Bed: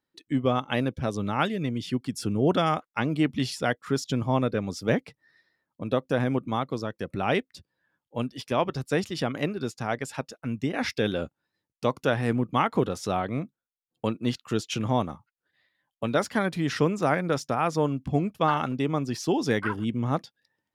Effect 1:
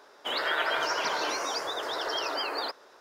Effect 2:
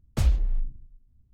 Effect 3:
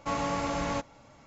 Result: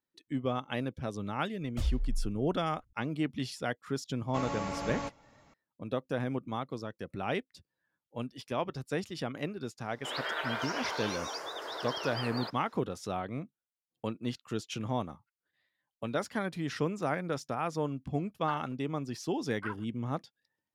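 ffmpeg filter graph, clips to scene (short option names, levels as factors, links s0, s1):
-filter_complex "[0:a]volume=0.398[s0];[2:a]aphaser=in_gain=1:out_gain=1:delay=2.8:decay=0.48:speed=1.5:type=triangular,atrim=end=1.33,asetpts=PTS-STARTPTS,volume=0.266,afade=t=in:d=0.004:c=hsin,afade=t=out:st=1.326:d=0.004:c=hsin,adelay=1600[s1];[3:a]atrim=end=1.26,asetpts=PTS-STARTPTS,volume=0.501,afade=t=in:d=0.004:c=hsin,afade=t=out:st=1.256:d=0.004:c=hsin,adelay=4280[s2];[1:a]atrim=end=3,asetpts=PTS-STARTPTS,volume=0.447,afade=t=in:d=0.004:c=hsin,afade=t=out:st=2.996:d=0.004:c=hsin,adelay=9790[s3];[s0][s1][s2][s3]amix=inputs=4:normalize=0"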